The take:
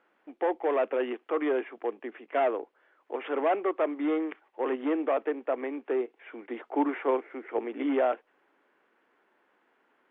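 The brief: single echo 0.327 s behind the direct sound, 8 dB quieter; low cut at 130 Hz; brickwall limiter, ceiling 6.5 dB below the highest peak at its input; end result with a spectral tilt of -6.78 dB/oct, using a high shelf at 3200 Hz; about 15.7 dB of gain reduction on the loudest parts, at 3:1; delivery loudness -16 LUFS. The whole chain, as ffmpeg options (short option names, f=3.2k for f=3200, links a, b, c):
-af "highpass=130,highshelf=f=3.2k:g=-4,acompressor=threshold=-44dB:ratio=3,alimiter=level_in=11dB:limit=-24dB:level=0:latency=1,volume=-11dB,aecho=1:1:327:0.398,volume=29dB"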